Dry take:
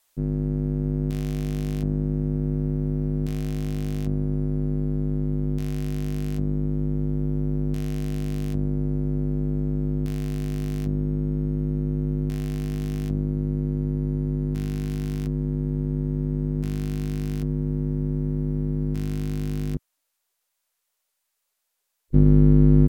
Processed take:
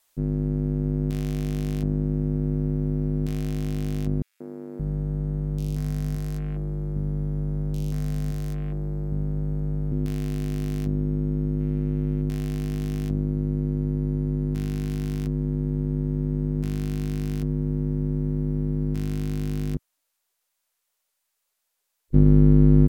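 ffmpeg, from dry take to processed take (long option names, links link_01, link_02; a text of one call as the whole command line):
ffmpeg -i in.wav -filter_complex "[0:a]asettb=1/sr,asplit=3[link_01][link_02][link_03];[link_01]atrim=end=4.224[link_04];[link_02]atrim=start=4.22:end=9.92,asetpts=PTS-STARTPTS,afade=type=in:duration=0.004:curve=qsin,afade=type=out:start_time=5.696:duration=0.004:curve=qsin,acrossover=split=290|2500[link_05][link_06][link_07];[link_06]adelay=180[link_08];[link_05]adelay=570[link_09];[link_09][link_08][link_07]amix=inputs=3:normalize=0,atrim=end_sample=251370[link_10];[link_03]atrim=start=9.916[link_11];[link_04][link_10]acrossfade=duration=0.004:curve1=hsin:curve2=qsin[link_12];[link_12][link_11]acrossfade=duration=0.004:curve1=qsin:curve2=hsin,asettb=1/sr,asplit=3[link_13][link_14][link_15];[link_13]atrim=end=11.604[link_16];[link_14]atrim=start=11.6:end=12.22,asetpts=PTS-STARTPTS,afade=type=in:duration=0.004:curve=qsin,afade=type=out:start_time=0.616:duration=0.004:curve=qsin,equalizer=frequency=2600:width_type=o:width=1.3:gain=8.5[link_17];[link_15]atrim=start=12.216[link_18];[link_16][link_17]acrossfade=duration=0.004:curve1=hsin:curve2=qsin[link_19];[link_19][link_18]acrossfade=duration=0.004:curve1=qsin:curve2=hsin" out.wav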